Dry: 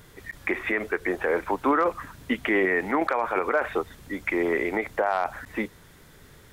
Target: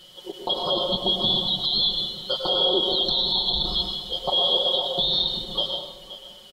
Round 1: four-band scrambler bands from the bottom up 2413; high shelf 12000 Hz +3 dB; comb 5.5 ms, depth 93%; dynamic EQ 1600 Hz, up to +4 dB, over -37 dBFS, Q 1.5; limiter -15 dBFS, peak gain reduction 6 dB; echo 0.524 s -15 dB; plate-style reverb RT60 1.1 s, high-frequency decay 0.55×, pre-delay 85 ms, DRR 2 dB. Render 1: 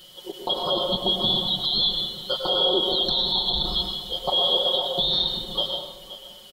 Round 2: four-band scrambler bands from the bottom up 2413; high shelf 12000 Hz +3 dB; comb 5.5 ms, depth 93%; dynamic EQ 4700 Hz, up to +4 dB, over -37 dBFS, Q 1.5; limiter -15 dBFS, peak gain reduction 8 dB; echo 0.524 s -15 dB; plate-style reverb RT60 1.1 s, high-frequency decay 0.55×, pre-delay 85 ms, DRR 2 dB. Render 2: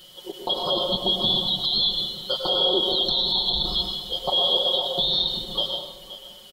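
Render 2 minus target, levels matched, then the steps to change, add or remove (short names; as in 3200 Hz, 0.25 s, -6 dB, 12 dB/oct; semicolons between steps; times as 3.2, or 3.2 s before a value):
8000 Hz band +2.5 dB
change: high shelf 12000 Hz -9 dB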